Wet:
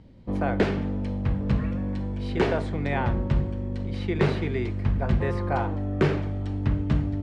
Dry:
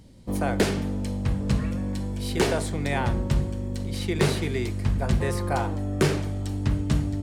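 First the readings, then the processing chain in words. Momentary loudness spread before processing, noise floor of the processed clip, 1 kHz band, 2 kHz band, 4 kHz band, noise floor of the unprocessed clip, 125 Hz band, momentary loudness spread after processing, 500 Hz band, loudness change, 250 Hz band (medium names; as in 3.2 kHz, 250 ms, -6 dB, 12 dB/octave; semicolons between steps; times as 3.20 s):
6 LU, -30 dBFS, 0.0 dB, -1.0 dB, -7.0 dB, -30 dBFS, 0.0 dB, 6 LU, 0.0 dB, -0.5 dB, 0.0 dB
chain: low-pass 2.6 kHz 12 dB/octave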